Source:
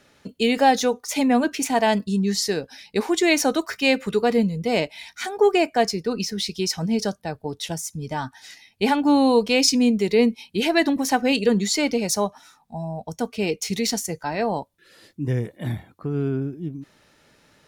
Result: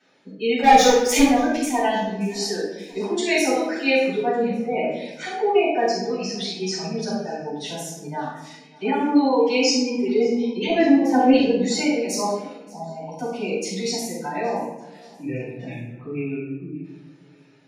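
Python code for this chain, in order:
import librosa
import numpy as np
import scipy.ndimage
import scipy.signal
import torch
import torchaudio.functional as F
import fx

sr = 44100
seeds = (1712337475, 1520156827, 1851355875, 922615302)

y = fx.rattle_buzz(x, sr, strikes_db=-23.0, level_db=-24.0)
y = scipy.signal.sosfilt(scipy.signal.butter(2, 220.0, 'highpass', fs=sr, output='sos'), y)
y = fx.dereverb_blind(y, sr, rt60_s=0.51)
y = fx.lowpass(y, sr, hz=2500.0, slope=12, at=(4.15, 4.93))
y = fx.dereverb_blind(y, sr, rt60_s=0.65)
y = fx.spec_gate(y, sr, threshold_db=-20, keep='strong')
y = fx.leveller(y, sr, passes=3, at=(0.63, 1.23))
y = fx.tilt_eq(y, sr, slope=-4.0, at=(10.69, 11.33))
y = fx.echo_feedback(y, sr, ms=578, feedback_pct=50, wet_db=-23.0)
y = fx.room_shoebox(y, sr, seeds[0], volume_m3=320.0, walls='mixed', distance_m=7.3)
y = y * librosa.db_to_amplitude(-15.5)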